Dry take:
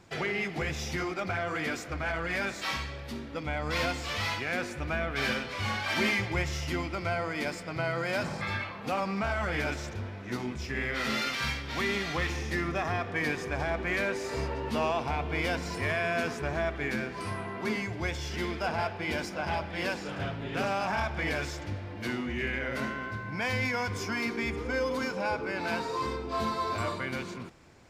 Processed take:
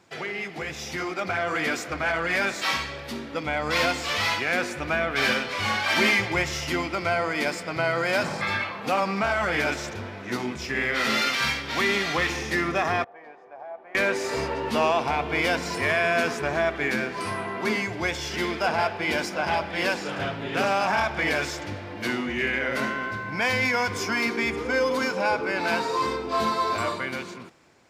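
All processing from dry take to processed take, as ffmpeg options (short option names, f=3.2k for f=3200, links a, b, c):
-filter_complex "[0:a]asettb=1/sr,asplit=3[a][b][c];[a]atrim=end=13.044[d];[b]atrim=start=13.04:end=13.95,asetpts=PTS-STARTPTS,afade=t=in:d=0.004:c=qsin,afade=t=out:st=0.906:d=0.004:c=qsin,lowpass=f=730:t=q:w=3,aderivative[e];[c]atrim=start=13.946[f];[d][e]acrossfade=d=0.004:c1=hsin:c2=qsin[g];[g][f]acrossfade=d=0.004:c1=qsin:c2=hsin,highpass=f=260:p=1,dynaudnorm=f=250:g=9:m=7.5dB"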